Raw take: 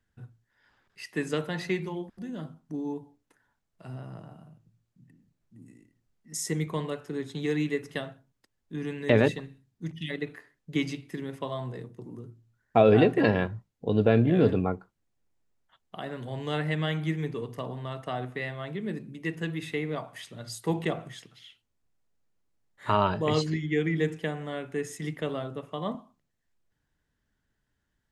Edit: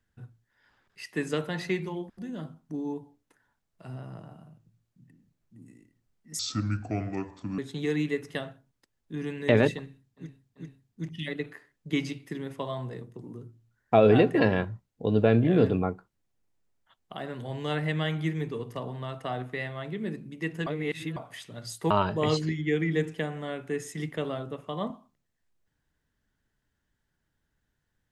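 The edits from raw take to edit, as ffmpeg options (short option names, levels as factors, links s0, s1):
-filter_complex "[0:a]asplit=8[s0][s1][s2][s3][s4][s5][s6][s7];[s0]atrim=end=6.394[s8];[s1]atrim=start=6.39:end=7.19,asetpts=PTS-STARTPTS,asetrate=29547,aresample=44100[s9];[s2]atrim=start=7.186:end=9.93[s10];[s3]atrim=start=9.38:end=9.93[s11];[s4]atrim=start=9.38:end=19.492[s12];[s5]atrim=start=19.488:end=19.992,asetpts=PTS-STARTPTS,areverse[s13];[s6]atrim=start=19.988:end=20.732[s14];[s7]atrim=start=22.948[s15];[s8][s9]acrossfade=d=0.004:c1=hsin:c2=hsin[s16];[s16][s10]acrossfade=d=0.004:c1=hsin:c2=hsin[s17];[s17][s11]acrossfade=d=0.16:c1=tri:c2=tri[s18];[s18][s12]acrossfade=d=0.16:c1=tri:c2=tri[s19];[s19][s13]acrossfade=d=0.004:c1=hsin:c2=hsin[s20];[s20][s14]acrossfade=d=0.004:c1=hsin:c2=hsin[s21];[s21][s15]acrossfade=d=0.004:c1=hsin:c2=hsin"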